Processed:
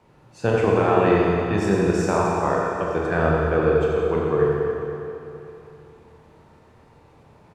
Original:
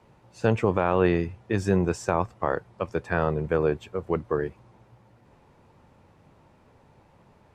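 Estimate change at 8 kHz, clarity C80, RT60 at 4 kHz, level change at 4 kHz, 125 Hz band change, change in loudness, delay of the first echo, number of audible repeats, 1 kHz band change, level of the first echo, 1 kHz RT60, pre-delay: no reading, -1.5 dB, 2.8 s, +5.5 dB, +4.0 dB, +5.5 dB, 88 ms, 1, +6.0 dB, -5.5 dB, 3.0 s, 25 ms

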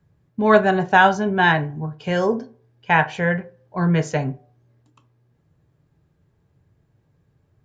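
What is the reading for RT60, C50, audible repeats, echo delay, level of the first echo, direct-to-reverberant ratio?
0.45 s, 19.0 dB, no echo, no echo, no echo, 8.0 dB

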